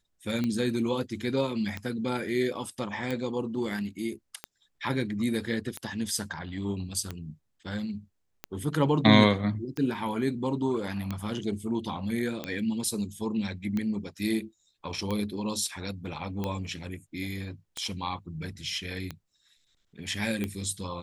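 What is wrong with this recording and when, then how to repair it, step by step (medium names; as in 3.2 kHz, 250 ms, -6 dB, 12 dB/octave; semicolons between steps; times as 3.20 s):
tick 45 rpm -18 dBFS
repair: de-click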